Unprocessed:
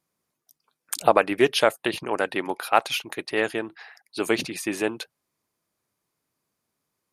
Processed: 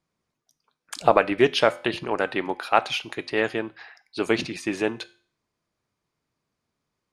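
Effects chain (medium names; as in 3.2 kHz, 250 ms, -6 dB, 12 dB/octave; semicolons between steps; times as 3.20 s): low-pass 5.8 kHz 12 dB/octave; bass shelf 85 Hz +11.5 dB; reverberation RT60 0.45 s, pre-delay 4 ms, DRR 14 dB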